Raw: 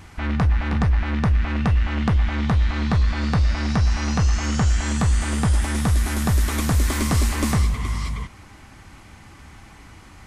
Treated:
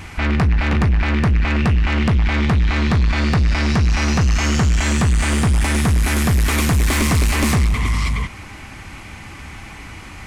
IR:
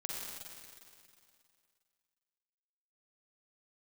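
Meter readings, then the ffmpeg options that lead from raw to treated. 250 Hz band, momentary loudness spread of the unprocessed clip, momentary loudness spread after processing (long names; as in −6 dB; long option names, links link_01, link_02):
+4.5 dB, 1 LU, 19 LU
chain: -af "equalizer=frequency=2400:width=2.3:gain=6.5,asoftclip=type=tanh:threshold=-20.5dB,volume=8.5dB"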